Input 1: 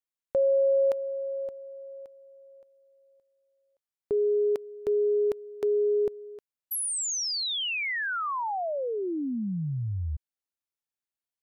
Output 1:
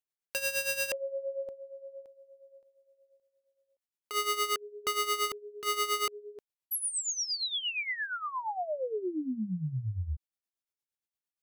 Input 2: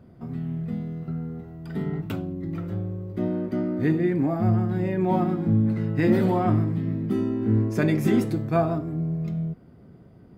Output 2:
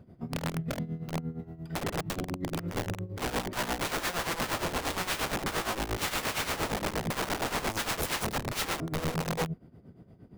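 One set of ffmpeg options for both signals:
ffmpeg -i in.wav -af "equalizer=frequency=1300:width_type=o:width=0.83:gain=-3,aeval=exprs='(mod(15.8*val(0)+1,2)-1)/15.8':channel_layout=same,tremolo=f=8.6:d=0.75" out.wav

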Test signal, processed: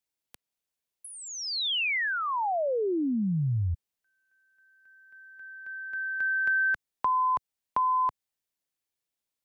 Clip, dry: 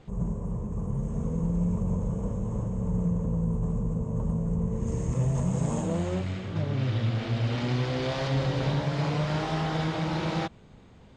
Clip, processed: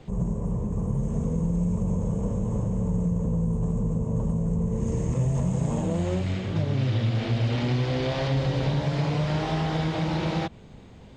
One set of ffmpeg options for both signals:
ffmpeg -i in.wav -filter_complex "[0:a]equalizer=frequency=1300:width=1.8:gain=-4,acrossover=split=110|4300[link_01][link_02][link_03];[link_01]acompressor=threshold=-34dB:ratio=4[link_04];[link_02]acompressor=threshold=-30dB:ratio=4[link_05];[link_03]acompressor=threshold=-55dB:ratio=4[link_06];[link_04][link_05][link_06]amix=inputs=3:normalize=0,volume=5.5dB" out.wav

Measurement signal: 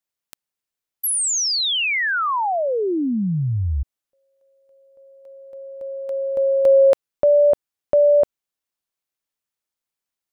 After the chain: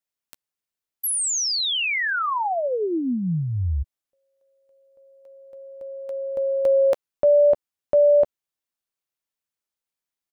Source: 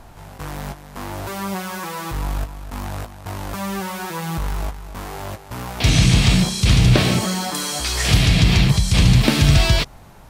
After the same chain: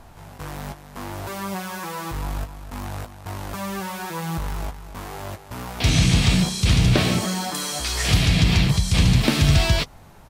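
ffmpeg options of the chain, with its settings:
ffmpeg -i in.wav -filter_complex "[0:a]asplit=2[link_01][link_02];[link_02]adelay=12,volume=-13.5dB[link_03];[link_01][link_03]amix=inputs=2:normalize=0,volume=-3dB" out.wav

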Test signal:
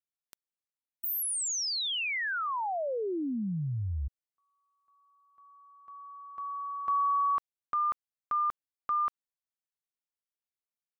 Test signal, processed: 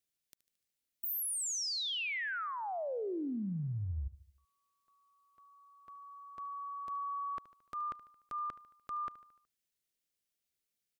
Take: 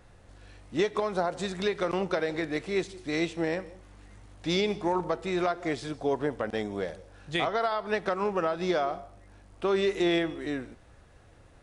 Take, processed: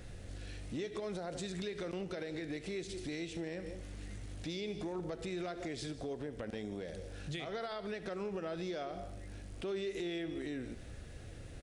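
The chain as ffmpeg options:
ffmpeg -i in.wav -af "equalizer=frequency=1000:width_type=o:width=1.1:gain=-13.5,acompressor=threshold=-44dB:ratio=6:attack=0.25:release=103:knee=6:detection=rms,aecho=1:1:74|148|222|296|370:0.141|0.0777|0.0427|0.0235|0.0129,volume=8dB" out.wav

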